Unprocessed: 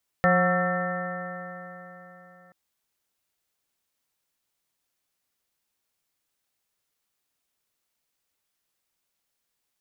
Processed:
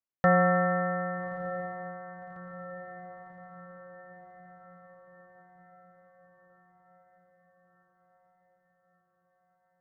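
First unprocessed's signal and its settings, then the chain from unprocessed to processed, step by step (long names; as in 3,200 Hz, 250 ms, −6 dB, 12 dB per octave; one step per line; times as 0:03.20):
stiff-string partials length 2.28 s, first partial 177 Hz, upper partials −16/0.5/−2/−18/−11.5/−2/−18.5/−1/−17 dB, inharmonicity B 0.0033, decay 3.79 s, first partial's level −22 dB
low-pass filter 1,700 Hz 12 dB per octave
noise gate −39 dBFS, range −15 dB
feedback delay with all-pass diffusion 1,221 ms, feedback 54%, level −13 dB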